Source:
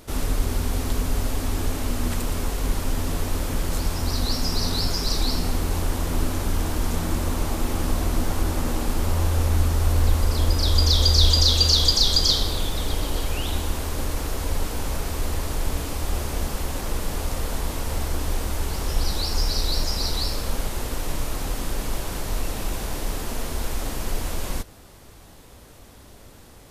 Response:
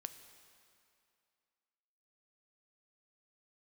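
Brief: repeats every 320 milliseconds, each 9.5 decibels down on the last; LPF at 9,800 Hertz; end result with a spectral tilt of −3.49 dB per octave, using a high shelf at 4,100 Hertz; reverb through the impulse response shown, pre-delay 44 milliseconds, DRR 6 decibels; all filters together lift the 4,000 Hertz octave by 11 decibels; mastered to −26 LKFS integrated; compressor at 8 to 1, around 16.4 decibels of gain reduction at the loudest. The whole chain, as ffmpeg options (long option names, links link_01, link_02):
-filter_complex "[0:a]lowpass=9800,equalizer=frequency=4000:width_type=o:gain=8.5,highshelf=frequency=4100:gain=7.5,acompressor=threshold=-22dB:ratio=8,aecho=1:1:320|640|960|1280:0.335|0.111|0.0365|0.012,asplit=2[link_01][link_02];[1:a]atrim=start_sample=2205,adelay=44[link_03];[link_02][link_03]afir=irnorm=-1:irlink=0,volume=-2dB[link_04];[link_01][link_04]amix=inputs=2:normalize=0,volume=-1dB"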